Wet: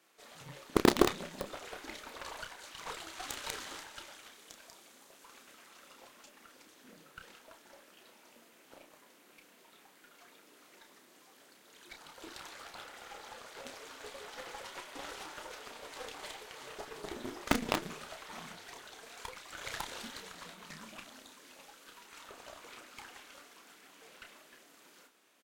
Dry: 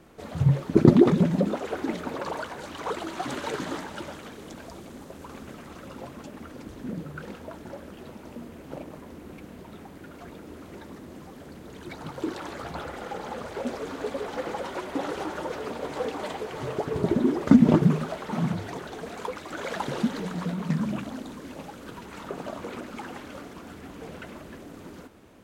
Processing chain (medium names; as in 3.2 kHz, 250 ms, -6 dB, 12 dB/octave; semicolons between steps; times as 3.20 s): Bessel high-pass 390 Hz, order 2; tilt shelf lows -8 dB, about 1.3 kHz; Chebyshev shaper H 3 -11 dB, 4 -21 dB, 6 -23 dB, 7 -41 dB, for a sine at -8.5 dBFS; doubling 31 ms -7 dB; in parallel at -4 dB: bit crusher 5-bit; on the sum: trim +9 dB